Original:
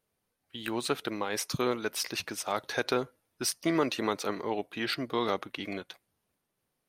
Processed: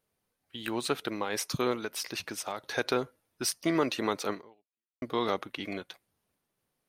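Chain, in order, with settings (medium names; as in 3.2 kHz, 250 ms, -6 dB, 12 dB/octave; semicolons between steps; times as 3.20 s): 1.76–2.72 s: compression 10:1, threshold -31 dBFS, peak gain reduction 8 dB; 4.33–5.02 s: fade out exponential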